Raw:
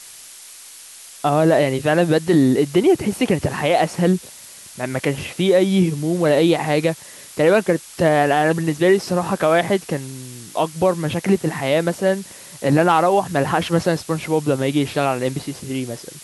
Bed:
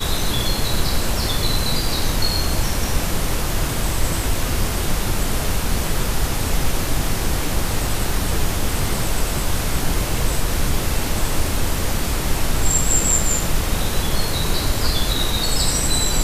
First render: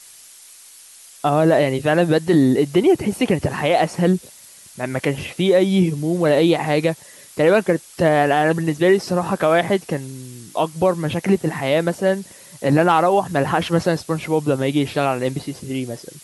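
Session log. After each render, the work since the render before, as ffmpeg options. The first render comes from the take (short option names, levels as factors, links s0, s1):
-af "afftdn=nr=6:nf=-41"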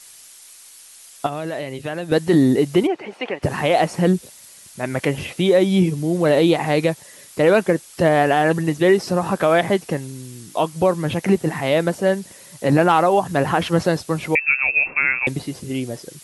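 -filter_complex "[0:a]asettb=1/sr,asplit=3[s0][s1][s2];[s0]atrim=end=1.264[s3];[s1]atrim=start=1.26:end=2.12,asetpts=PTS-STARTPTS,afade=t=in:d=0.004:c=qsin,afade=t=out:st=0.856:d=0.004:c=qsin,acrossover=split=1800|4100[s4][s5][s6];[s4]acompressor=threshold=0.0447:ratio=4[s7];[s5]acompressor=threshold=0.0126:ratio=4[s8];[s6]acompressor=threshold=0.00398:ratio=4[s9];[s7][s8][s9]amix=inputs=3:normalize=0[s10];[s2]atrim=start=2.116[s11];[s3][s10]acrossfade=d=0.004:c1=hsin:c2=qsin[s12];[s12][s11]acrossfade=d=0.004:c1=qsin:c2=hsin,asplit=3[s13][s14][s15];[s13]afade=t=out:st=2.86:d=0.02[s16];[s14]highpass=590,lowpass=2700,afade=t=in:st=2.86:d=0.02,afade=t=out:st=3.42:d=0.02[s17];[s15]afade=t=in:st=3.42:d=0.02[s18];[s16][s17][s18]amix=inputs=3:normalize=0,asettb=1/sr,asplit=3[s19][s20][s21];[s19]atrim=end=14.354[s22];[s20]atrim=start=14.35:end=15.27,asetpts=PTS-STARTPTS,afade=t=in:d=0.004:c=qsin,afade=t=out:st=0.916:d=0.004:c=qsin,lowpass=f=2400:t=q:w=0.5098,lowpass=f=2400:t=q:w=0.6013,lowpass=f=2400:t=q:w=0.9,lowpass=f=2400:t=q:w=2.563,afreqshift=-2800[s23];[s21]atrim=start=15.266[s24];[s22][s23]acrossfade=d=0.004:c1=hsin:c2=qsin[s25];[s25][s24]acrossfade=d=0.004:c1=qsin:c2=hsin"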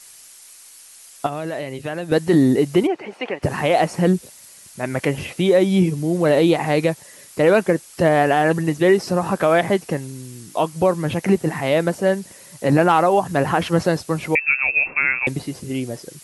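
-af "equalizer=f=3500:t=o:w=0.43:g=-3"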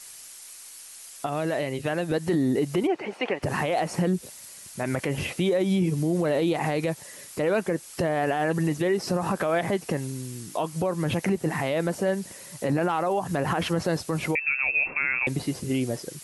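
-af "acompressor=threshold=0.126:ratio=6,alimiter=limit=0.158:level=0:latency=1:release=31"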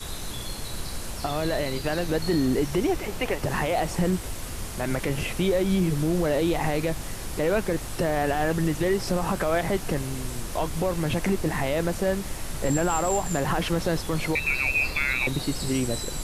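-filter_complex "[1:a]volume=0.2[s0];[0:a][s0]amix=inputs=2:normalize=0"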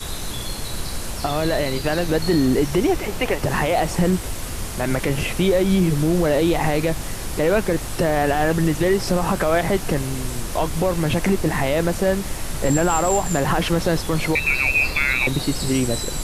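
-af "volume=1.88"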